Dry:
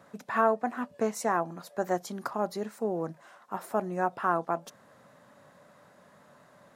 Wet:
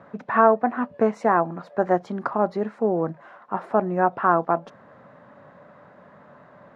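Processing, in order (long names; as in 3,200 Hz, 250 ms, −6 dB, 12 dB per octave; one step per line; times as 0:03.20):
low-pass filter 1,900 Hz 12 dB per octave
level +8.5 dB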